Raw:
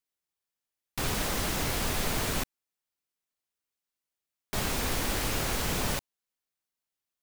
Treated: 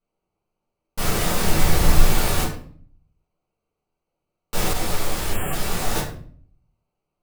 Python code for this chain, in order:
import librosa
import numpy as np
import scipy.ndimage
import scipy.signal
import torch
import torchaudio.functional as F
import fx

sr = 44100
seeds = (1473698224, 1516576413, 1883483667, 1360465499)

p1 = fx.wiener(x, sr, points=25)
p2 = fx.low_shelf(p1, sr, hz=320.0, db=8.0, at=(1.44, 2.06))
p3 = fx.fold_sine(p2, sr, drive_db=20, ceiling_db=-17.0)
p4 = p2 + (p3 * 10.0 ** (-9.0 / 20.0))
p5 = fx.room_shoebox(p4, sr, seeds[0], volume_m3=61.0, walls='mixed', distance_m=1.6)
p6 = fx.spec_box(p5, sr, start_s=5.33, length_s=0.2, low_hz=3300.0, high_hz=7100.0, gain_db=-29)
p7 = fx.detune_double(p6, sr, cents=29, at=(4.73, 5.96))
y = p7 * 10.0 ** (-4.0 / 20.0)